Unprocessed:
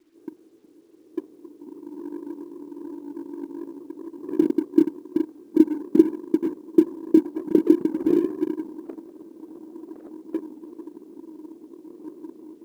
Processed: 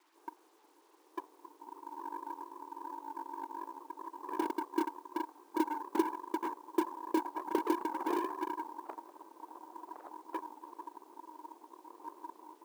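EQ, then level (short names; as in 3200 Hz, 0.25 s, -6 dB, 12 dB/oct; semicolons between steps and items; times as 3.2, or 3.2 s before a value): resonant high-pass 910 Hz, resonance Q 4.3; 0.0 dB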